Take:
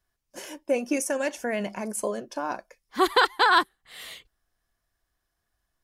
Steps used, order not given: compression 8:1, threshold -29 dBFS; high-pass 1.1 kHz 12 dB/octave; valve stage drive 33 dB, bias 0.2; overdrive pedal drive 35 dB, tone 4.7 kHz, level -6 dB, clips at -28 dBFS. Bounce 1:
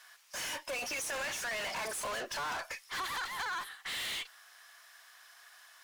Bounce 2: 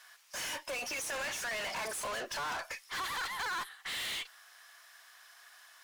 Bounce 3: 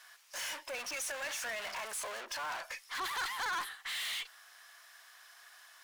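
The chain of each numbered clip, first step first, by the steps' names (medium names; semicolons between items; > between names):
high-pass > overdrive pedal > compression > valve stage; compression > high-pass > overdrive pedal > valve stage; overdrive pedal > high-pass > valve stage > compression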